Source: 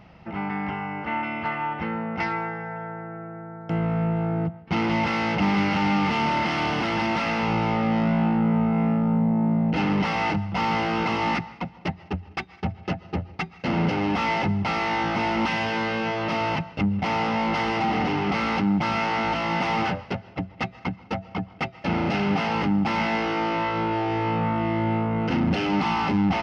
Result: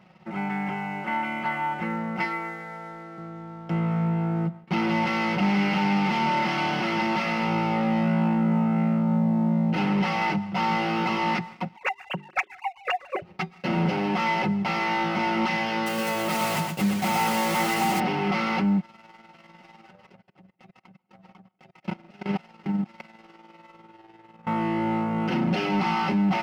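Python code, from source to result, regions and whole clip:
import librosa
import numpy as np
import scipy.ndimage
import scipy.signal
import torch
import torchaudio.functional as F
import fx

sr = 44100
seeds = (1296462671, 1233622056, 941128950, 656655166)

y = fx.chain(x, sr, fx.bessel_highpass(hz=260.0, order=4),
    fx.peak_eq(hz=980.0, db=-10.5, octaves=0.25), at=(2.24, 3.18))
y = fx.chain(y, sr, fx.sine_speech(),
    fx.tilt_shelf(db=-4.5, hz=720.0),
    fx.hum_notches(base_hz=50, count=8), at=(11.76, 13.22))
y = fx.chain(y, sr, fx.block_float(bits=3),
    fx.echo_single(ms=118, db=-5.0), at=(15.86, 18.0))
y = fx.chain(y, sr, fx.level_steps(step_db=23),
    fx.tremolo(hz=20.0, depth=0.47), at=(18.8, 24.47))
y = scipy.signal.sosfilt(scipy.signal.butter(2, 130.0, 'highpass', fs=sr, output='sos'), y)
y = y + 0.66 * np.pad(y, (int(5.4 * sr / 1000.0), 0))[:len(y)]
y = fx.leveller(y, sr, passes=1)
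y = y * 10.0 ** (-6.0 / 20.0)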